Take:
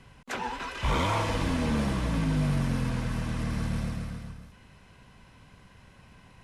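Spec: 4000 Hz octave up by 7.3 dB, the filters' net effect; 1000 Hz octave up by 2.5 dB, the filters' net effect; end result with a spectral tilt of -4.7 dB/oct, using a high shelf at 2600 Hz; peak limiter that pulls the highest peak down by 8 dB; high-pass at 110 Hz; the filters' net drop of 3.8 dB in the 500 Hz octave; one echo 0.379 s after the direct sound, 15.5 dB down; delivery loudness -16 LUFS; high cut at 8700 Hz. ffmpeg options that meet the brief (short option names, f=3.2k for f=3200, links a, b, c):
-af "highpass=110,lowpass=8.7k,equalizer=f=500:t=o:g=-6,equalizer=f=1k:t=o:g=3.5,highshelf=f=2.6k:g=3,equalizer=f=4k:t=o:g=7,alimiter=limit=-22dB:level=0:latency=1,aecho=1:1:379:0.168,volume=15.5dB"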